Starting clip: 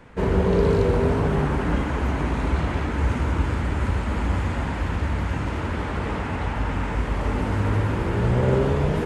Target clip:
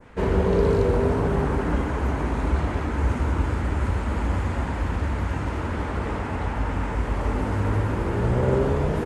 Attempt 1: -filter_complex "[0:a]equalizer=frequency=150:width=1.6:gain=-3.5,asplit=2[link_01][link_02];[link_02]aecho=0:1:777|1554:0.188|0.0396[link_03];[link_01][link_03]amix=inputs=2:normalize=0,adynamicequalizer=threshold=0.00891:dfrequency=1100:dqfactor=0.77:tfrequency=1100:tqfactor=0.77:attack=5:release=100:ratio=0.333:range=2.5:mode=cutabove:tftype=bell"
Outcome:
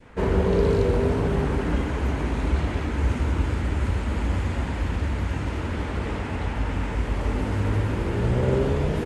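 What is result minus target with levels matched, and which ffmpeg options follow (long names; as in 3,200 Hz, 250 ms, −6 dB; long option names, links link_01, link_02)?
4,000 Hz band +3.5 dB
-filter_complex "[0:a]equalizer=frequency=150:width=1.6:gain=-3.5,asplit=2[link_01][link_02];[link_02]aecho=0:1:777|1554:0.188|0.0396[link_03];[link_01][link_03]amix=inputs=2:normalize=0,adynamicequalizer=threshold=0.00891:dfrequency=3100:dqfactor=0.77:tfrequency=3100:tqfactor=0.77:attack=5:release=100:ratio=0.333:range=2.5:mode=cutabove:tftype=bell"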